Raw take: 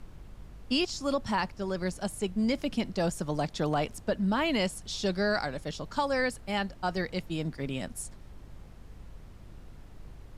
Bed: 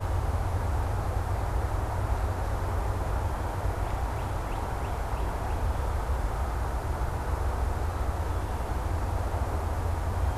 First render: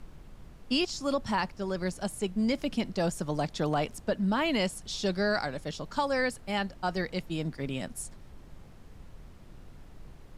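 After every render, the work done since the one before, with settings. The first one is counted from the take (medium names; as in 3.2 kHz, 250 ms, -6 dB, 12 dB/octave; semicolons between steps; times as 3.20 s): de-hum 50 Hz, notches 2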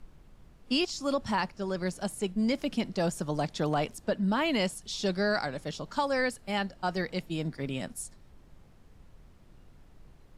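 noise print and reduce 6 dB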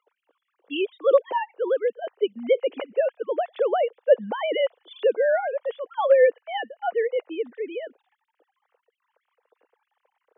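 formants replaced by sine waves; resonant high-pass 480 Hz, resonance Q 4.9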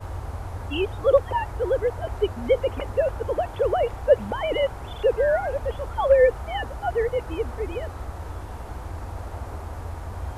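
add bed -4.5 dB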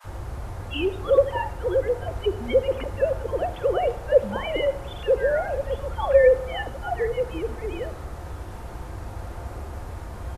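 bands offset in time highs, lows 40 ms, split 920 Hz; simulated room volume 2300 m³, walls furnished, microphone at 0.88 m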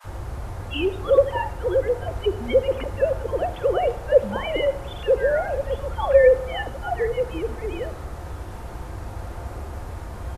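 trim +1.5 dB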